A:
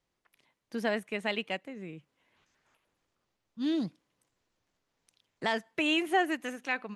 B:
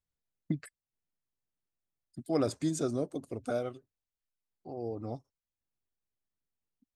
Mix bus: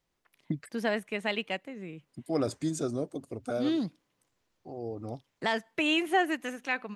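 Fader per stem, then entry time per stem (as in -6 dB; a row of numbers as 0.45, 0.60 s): +1.0, 0.0 dB; 0.00, 0.00 s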